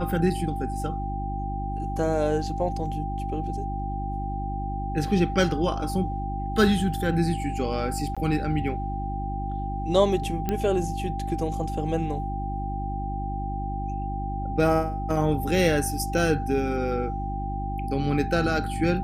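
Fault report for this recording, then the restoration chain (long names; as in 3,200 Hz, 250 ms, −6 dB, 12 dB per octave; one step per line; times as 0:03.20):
mains hum 50 Hz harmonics 7 −31 dBFS
whistle 790 Hz −32 dBFS
0:08.15–0:08.17: drop-out 16 ms
0:10.49: click −13 dBFS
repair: click removal
notch filter 790 Hz, Q 30
hum removal 50 Hz, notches 7
repair the gap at 0:08.15, 16 ms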